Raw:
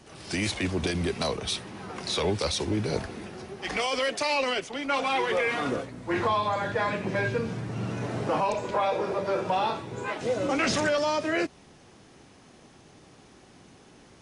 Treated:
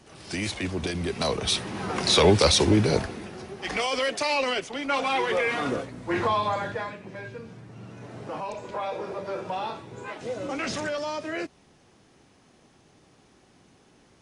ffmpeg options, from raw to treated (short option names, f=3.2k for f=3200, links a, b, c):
-af "volume=15.5dB,afade=t=in:st=1.05:d=0.91:silence=0.298538,afade=t=out:st=2.64:d=0.55:silence=0.398107,afade=t=out:st=6.51:d=0.45:silence=0.237137,afade=t=in:st=7.92:d=1.01:silence=0.473151"